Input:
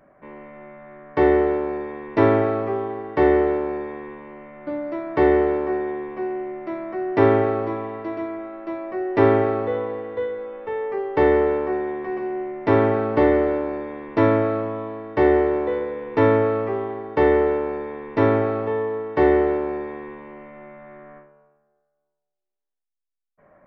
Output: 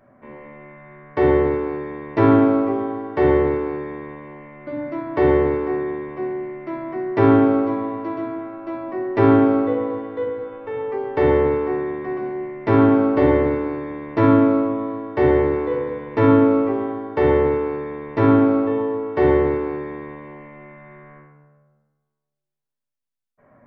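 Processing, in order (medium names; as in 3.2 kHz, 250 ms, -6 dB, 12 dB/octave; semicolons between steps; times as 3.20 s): on a send: high-pass 200 Hz 12 dB/octave + reverberation RT60 1.0 s, pre-delay 3 ms, DRR 3 dB; on the sum: trim -1 dB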